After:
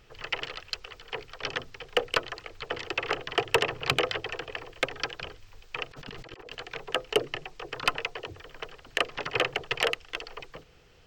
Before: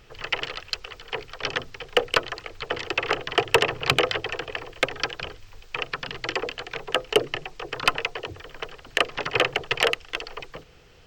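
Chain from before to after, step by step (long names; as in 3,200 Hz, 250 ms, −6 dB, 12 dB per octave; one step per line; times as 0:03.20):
0:05.91–0:06.55: compressor whose output falls as the input rises −40 dBFS, ratio −1
level −5 dB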